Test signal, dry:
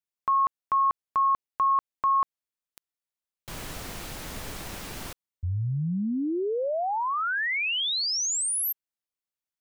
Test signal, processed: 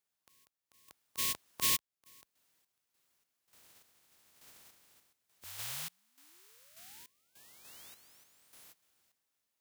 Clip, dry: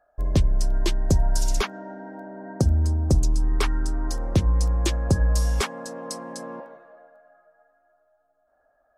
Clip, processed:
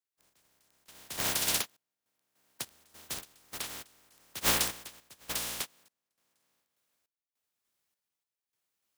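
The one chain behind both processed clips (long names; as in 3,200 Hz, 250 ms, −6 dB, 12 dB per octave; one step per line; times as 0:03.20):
compressing power law on the bin magnitudes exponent 0.11
in parallel at −10 dB: bit-depth reduction 6 bits, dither triangular
on the sum: high-pass filter 49 Hz
sample-and-hold tremolo 3.4 Hz, depth 95%
soft clipping −2.5 dBFS
dynamic equaliser 3,300 Hz, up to +3 dB, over −37 dBFS, Q 1.7
expander for the loud parts 2.5 to 1, over −31 dBFS
level −7.5 dB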